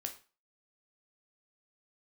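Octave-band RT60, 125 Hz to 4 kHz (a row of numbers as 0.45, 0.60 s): 0.40, 0.35, 0.30, 0.35, 0.35, 0.30 s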